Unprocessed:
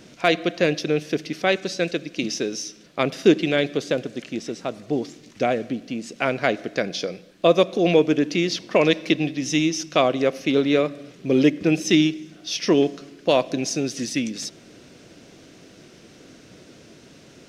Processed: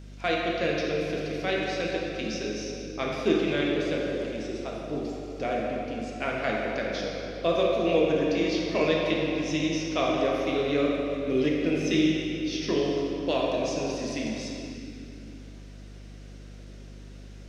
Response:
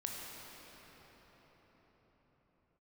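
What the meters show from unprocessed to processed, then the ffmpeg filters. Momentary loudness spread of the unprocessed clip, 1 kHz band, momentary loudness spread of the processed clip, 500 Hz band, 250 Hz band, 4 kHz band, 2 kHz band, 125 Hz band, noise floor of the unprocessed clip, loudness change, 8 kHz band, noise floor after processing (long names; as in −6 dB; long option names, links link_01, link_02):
11 LU, −4.5 dB, 21 LU, −4.5 dB, −5.5 dB, −6.0 dB, −5.0 dB, −5.0 dB, −49 dBFS, −5.5 dB, −10.0 dB, −44 dBFS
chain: -filter_complex "[0:a]acrossover=split=6400[link_01][link_02];[link_02]acompressor=threshold=-50dB:ratio=4:attack=1:release=60[link_03];[link_01][link_03]amix=inputs=2:normalize=0,lowshelf=frequency=340:gain=-4[link_04];[1:a]atrim=start_sample=2205,asetrate=88200,aresample=44100[link_05];[link_04][link_05]afir=irnorm=-1:irlink=0,aeval=exprs='val(0)+0.00708*(sin(2*PI*50*n/s)+sin(2*PI*2*50*n/s)/2+sin(2*PI*3*50*n/s)/3+sin(2*PI*4*50*n/s)/4+sin(2*PI*5*50*n/s)/5)':channel_layout=same"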